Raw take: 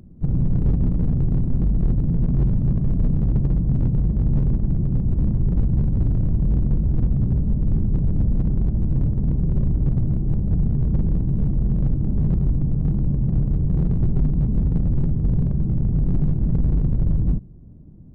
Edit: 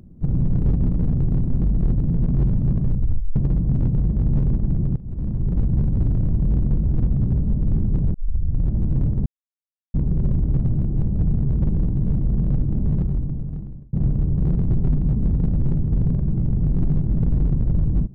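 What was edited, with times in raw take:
0:02.85: tape stop 0.51 s
0:04.96–0:05.85: fade in equal-power, from −19.5 dB
0:08.14: tape start 0.59 s
0:09.26: splice in silence 0.68 s
0:12.16–0:13.25: fade out

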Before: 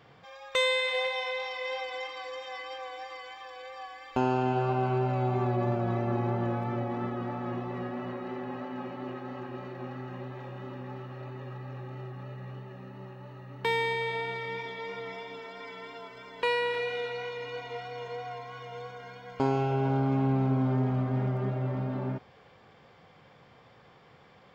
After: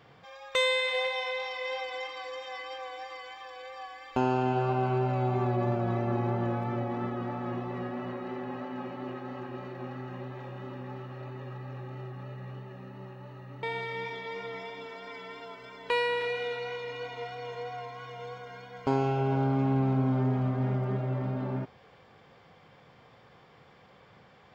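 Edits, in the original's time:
0:13.63–0:14.16: remove

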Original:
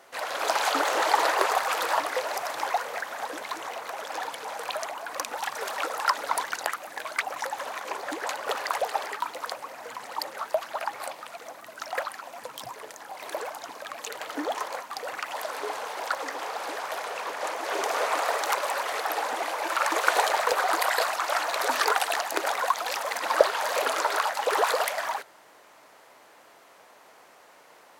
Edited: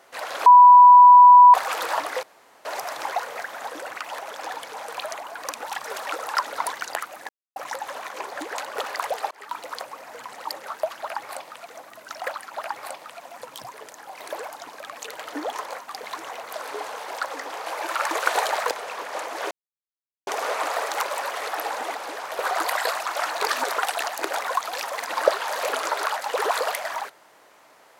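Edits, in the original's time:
0:00.46–0:01.54: beep over 985 Hz −6 dBFS
0:02.23: splice in room tone 0.42 s
0:03.40–0:03.89: swap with 0:15.04–0:15.40
0:07.00–0:07.27: silence
0:09.02–0:09.29: fade in
0:10.70–0:11.39: duplicate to 0:12.24
0:16.55–0:16.99: swap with 0:19.47–0:20.52
0:17.79: splice in silence 0.76 s
0:21.55–0:21.91: reverse

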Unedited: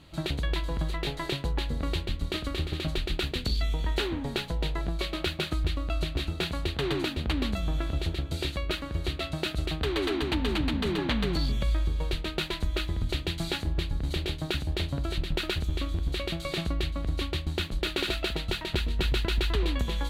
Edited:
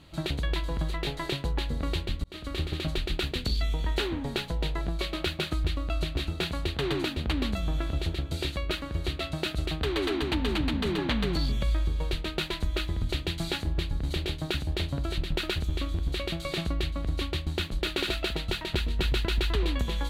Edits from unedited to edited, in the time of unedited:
0:02.24–0:02.59: fade in

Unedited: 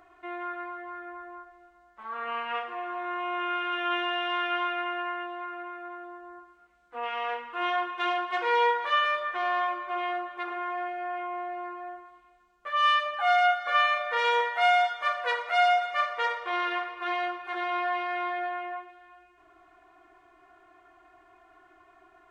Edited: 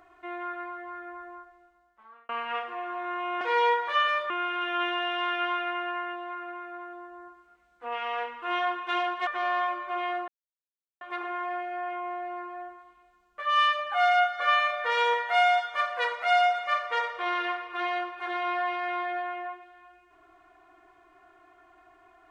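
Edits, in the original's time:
0:01.28–0:02.29: fade out linear
0:08.38–0:09.27: move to 0:03.41
0:10.28: splice in silence 0.73 s

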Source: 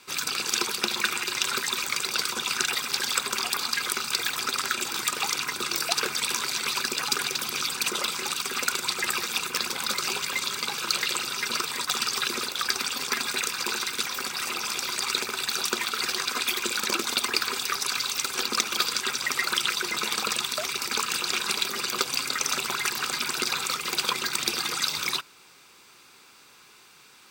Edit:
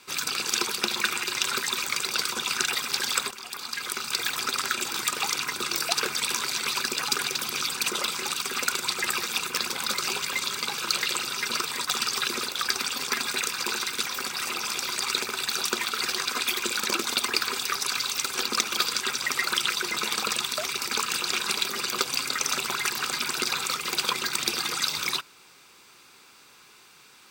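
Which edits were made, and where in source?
0:03.31–0:04.29: fade in, from −15.5 dB

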